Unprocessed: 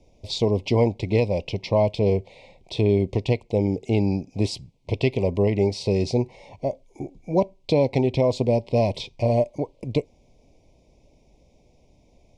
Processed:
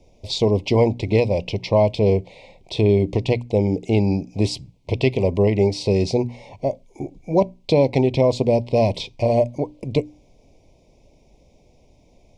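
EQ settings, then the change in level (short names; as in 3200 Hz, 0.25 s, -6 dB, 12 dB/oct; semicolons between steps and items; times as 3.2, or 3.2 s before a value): notches 60/120/180/240/300 Hz; +3.5 dB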